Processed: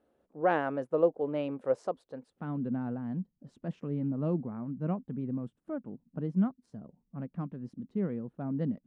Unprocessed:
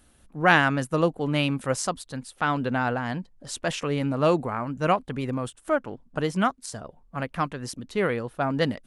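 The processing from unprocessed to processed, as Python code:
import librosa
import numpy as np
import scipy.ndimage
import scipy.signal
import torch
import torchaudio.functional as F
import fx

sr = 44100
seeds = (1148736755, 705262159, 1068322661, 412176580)

y = fx.bandpass_q(x, sr, hz=fx.steps((0.0, 490.0), (2.3, 200.0)), q=2.2)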